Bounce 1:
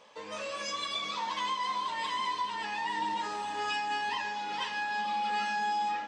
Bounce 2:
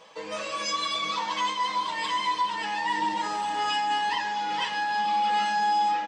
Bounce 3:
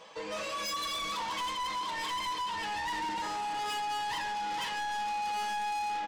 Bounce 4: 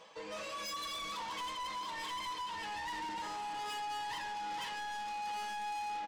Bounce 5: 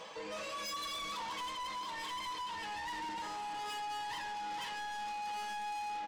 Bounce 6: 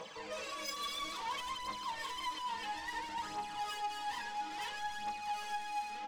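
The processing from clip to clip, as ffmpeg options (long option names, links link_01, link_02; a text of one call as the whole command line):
ffmpeg -i in.wav -af "aecho=1:1:6.2:0.55,volume=4.5dB" out.wav
ffmpeg -i in.wav -af "asoftclip=type=tanh:threshold=-32dB" out.wav
ffmpeg -i in.wav -af "areverse,acompressor=mode=upward:threshold=-41dB:ratio=2.5,areverse,aecho=1:1:1166:0.141,volume=-6dB" out.wav
ffmpeg -i in.wav -af "alimiter=level_in=22dB:limit=-24dB:level=0:latency=1,volume=-22dB,volume=8.5dB" out.wav
ffmpeg -i in.wav -af "aphaser=in_gain=1:out_gain=1:delay=4.4:decay=0.55:speed=0.59:type=triangular,volume=-1.5dB" out.wav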